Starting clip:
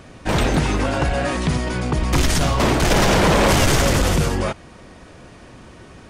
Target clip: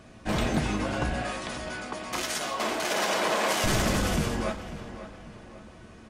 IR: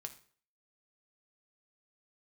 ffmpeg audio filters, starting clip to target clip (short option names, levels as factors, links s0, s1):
-filter_complex "[0:a]asettb=1/sr,asplit=3[s0][s1][s2];[s0]atrim=end=1.224[s3];[s1]atrim=start=1.22:end=3.64,asetpts=PTS-STARTPTS,afade=t=in:d=0.004:c=qsin,afade=t=out:st=2.416:d=0.004:c=qsin,highpass=450[s4];[s2]atrim=start=3.636[s5];[s3][s4]acrossfade=d=0.004:c1=hsin:c2=qsin[s6];[s6][s5]acrossfade=d=0.004:c1=qsin:c2=hsin,asplit=2[s7][s8];[s8]adelay=545,lowpass=f=3300:p=1,volume=0.237,asplit=2[s9][s10];[s10]adelay=545,lowpass=f=3300:p=1,volume=0.44,asplit=2[s11][s12];[s12]adelay=545,lowpass=f=3300:p=1,volume=0.44,asplit=2[s13][s14];[s14]adelay=545,lowpass=f=3300:p=1,volume=0.44[s15];[s7][s9][s11][s13][s15]amix=inputs=5:normalize=0[s16];[1:a]atrim=start_sample=2205,asetrate=70560,aresample=44100[s17];[s16][s17]afir=irnorm=-1:irlink=0"